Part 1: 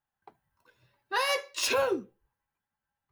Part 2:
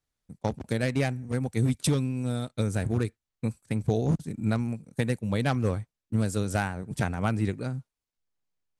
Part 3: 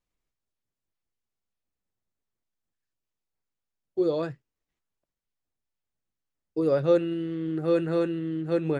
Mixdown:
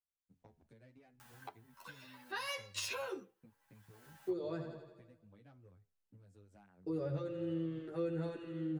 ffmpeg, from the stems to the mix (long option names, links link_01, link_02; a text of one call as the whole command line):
ffmpeg -i stem1.wav -i stem2.wav -i stem3.wav -filter_complex "[0:a]acompressor=mode=upward:threshold=-36dB:ratio=2.5,highpass=frequency=890:poles=1,acompressor=threshold=-32dB:ratio=6,adelay=1200,volume=2.5dB[link_01];[1:a]lowpass=frequency=2500:poles=1,acompressor=threshold=-35dB:ratio=8,flanger=delay=9.5:depth=2.4:regen=85:speed=0.77:shape=sinusoidal,volume=-16dB[link_02];[2:a]adelay=300,volume=-3.5dB,asplit=2[link_03][link_04];[link_04]volume=-10.5dB,aecho=0:1:85|170|255|340|425|510|595|680|765:1|0.58|0.336|0.195|0.113|0.0656|0.0381|0.0221|0.0128[link_05];[link_01][link_02][link_03][link_05]amix=inputs=4:normalize=0,acrossover=split=130[link_06][link_07];[link_07]acompressor=threshold=-34dB:ratio=6[link_08];[link_06][link_08]amix=inputs=2:normalize=0,asplit=2[link_09][link_10];[link_10]adelay=10.1,afreqshift=-1.7[link_11];[link_09][link_11]amix=inputs=2:normalize=1" out.wav